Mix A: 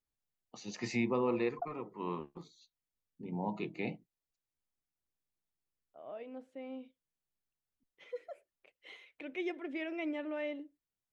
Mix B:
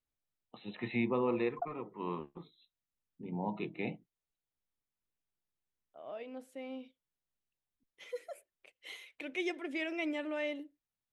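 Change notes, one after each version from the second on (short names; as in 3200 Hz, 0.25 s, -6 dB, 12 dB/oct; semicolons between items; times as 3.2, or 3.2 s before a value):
first voice: add brick-wall FIR low-pass 4100 Hz; second voice: remove tape spacing loss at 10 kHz 21 dB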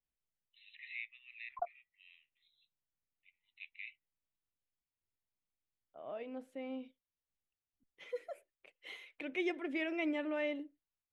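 first voice: add rippled Chebyshev high-pass 1900 Hz, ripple 3 dB; master: add tone controls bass +3 dB, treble -10 dB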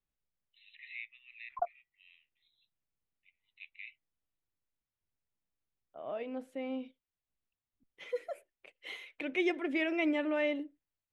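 second voice +5.0 dB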